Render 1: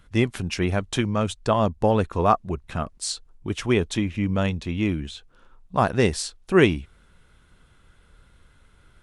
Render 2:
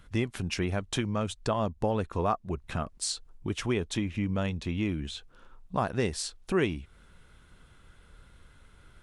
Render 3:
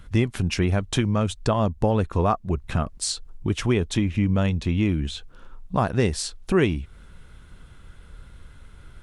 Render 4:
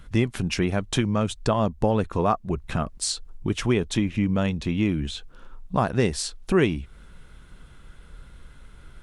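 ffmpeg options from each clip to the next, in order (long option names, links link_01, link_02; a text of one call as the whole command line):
ffmpeg -i in.wav -af "acompressor=threshold=-31dB:ratio=2" out.wav
ffmpeg -i in.wav -af "lowshelf=frequency=190:gain=6.5,volume=5dB" out.wav
ffmpeg -i in.wav -af "equalizer=frequency=87:width_type=o:width=0.4:gain=-9.5" out.wav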